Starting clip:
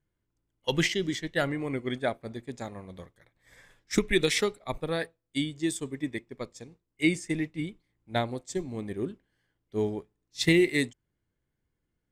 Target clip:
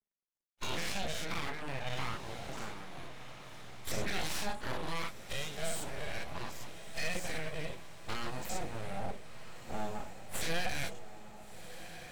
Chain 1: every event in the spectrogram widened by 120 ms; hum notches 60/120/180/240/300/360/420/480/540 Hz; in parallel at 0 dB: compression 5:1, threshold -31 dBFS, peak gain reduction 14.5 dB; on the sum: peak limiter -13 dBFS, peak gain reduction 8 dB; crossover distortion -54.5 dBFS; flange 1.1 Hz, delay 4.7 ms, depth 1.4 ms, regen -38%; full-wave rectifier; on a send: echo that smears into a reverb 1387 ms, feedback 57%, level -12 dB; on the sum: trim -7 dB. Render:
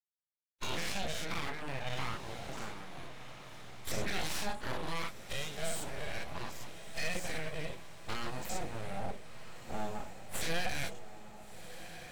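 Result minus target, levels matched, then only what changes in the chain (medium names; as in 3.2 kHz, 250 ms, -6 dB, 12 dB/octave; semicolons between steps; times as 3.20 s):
crossover distortion: distortion +9 dB
change: crossover distortion -64 dBFS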